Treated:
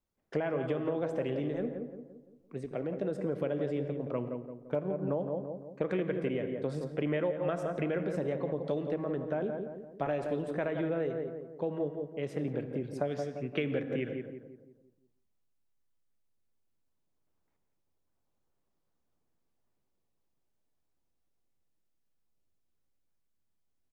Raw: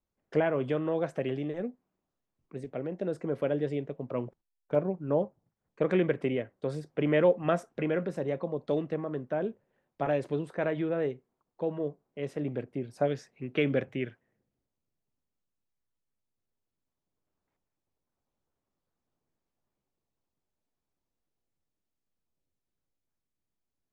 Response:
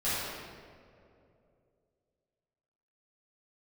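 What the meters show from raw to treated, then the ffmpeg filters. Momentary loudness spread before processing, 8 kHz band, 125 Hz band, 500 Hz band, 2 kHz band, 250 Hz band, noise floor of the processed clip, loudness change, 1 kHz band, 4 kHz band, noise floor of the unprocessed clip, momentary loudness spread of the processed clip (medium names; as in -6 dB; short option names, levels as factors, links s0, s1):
10 LU, no reading, -2.0 dB, -3.0 dB, -4.0 dB, -2.0 dB, -78 dBFS, -3.0 dB, -3.5 dB, -3.5 dB, under -85 dBFS, 7 LU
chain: -filter_complex "[0:a]asplit=2[s0][s1];[s1]adelay=171,lowpass=f=1200:p=1,volume=0.473,asplit=2[s2][s3];[s3]adelay=171,lowpass=f=1200:p=1,volume=0.48,asplit=2[s4][s5];[s5]adelay=171,lowpass=f=1200:p=1,volume=0.48,asplit=2[s6][s7];[s7]adelay=171,lowpass=f=1200:p=1,volume=0.48,asplit=2[s8][s9];[s9]adelay=171,lowpass=f=1200:p=1,volume=0.48,asplit=2[s10][s11];[s11]adelay=171,lowpass=f=1200:p=1,volume=0.48[s12];[s0][s2][s4][s6][s8][s10][s12]amix=inputs=7:normalize=0,asplit=2[s13][s14];[1:a]atrim=start_sample=2205,atrim=end_sample=6174,adelay=54[s15];[s14][s15]afir=irnorm=-1:irlink=0,volume=0.0944[s16];[s13][s16]amix=inputs=2:normalize=0,acompressor=threshold=0.0398:ratio=6"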